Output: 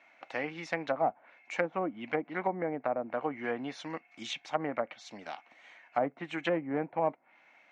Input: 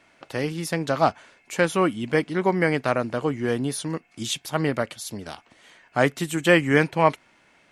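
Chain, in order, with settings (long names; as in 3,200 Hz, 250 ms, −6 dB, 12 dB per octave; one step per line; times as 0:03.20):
asymmetric clip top −18 dBFS, bottom −7 dBFS
loudspeaker in its box 330–5,600 Hz, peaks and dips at 400 Hz −10 dB, 760 Hz +6 dB, 2,200 Hz +7 dB, 3,300 Hz −4 dB, 4,800 Hz −9 dB
treble cut that deepens with the level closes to 610 Hz, closed at −20 dBFS
level −5 dB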